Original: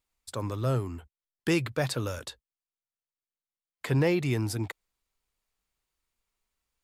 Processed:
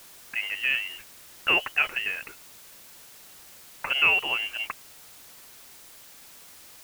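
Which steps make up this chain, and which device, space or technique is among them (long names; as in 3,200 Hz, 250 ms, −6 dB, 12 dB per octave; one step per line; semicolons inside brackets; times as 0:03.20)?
scrambled radio voice (band-pass filter 350–2,800 Hz; voice inversion scrambler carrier 3,100 Hz; white noise bed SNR 18 dB)
level +6.5 dB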